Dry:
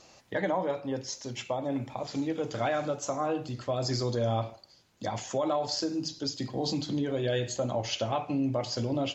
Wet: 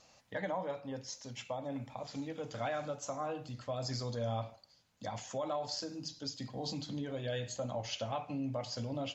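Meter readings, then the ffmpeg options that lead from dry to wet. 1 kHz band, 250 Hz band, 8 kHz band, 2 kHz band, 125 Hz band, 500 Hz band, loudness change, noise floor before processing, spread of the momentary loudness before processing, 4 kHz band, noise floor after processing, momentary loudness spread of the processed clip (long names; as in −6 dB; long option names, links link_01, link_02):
−7.0 dB, −9.5 dB, can't be measured, −7.0 dB, −7.0 dB, −8.5 dB, −8.0 dB, −58 dBFS, 6 LU, −7.0 dB, −65 dBFS, 6 LU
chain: -af "equalizer=frequency=360:width_type=o:width=0.28:gain=-14,volume=-7dB"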